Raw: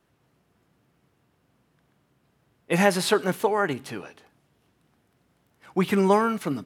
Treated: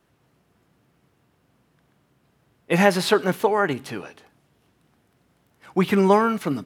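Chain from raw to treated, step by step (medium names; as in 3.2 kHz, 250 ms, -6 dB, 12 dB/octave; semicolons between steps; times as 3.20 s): dynamic bell 9 kHz, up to -6 dB, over -47 dBFS, Q 1.1; trim +3 dB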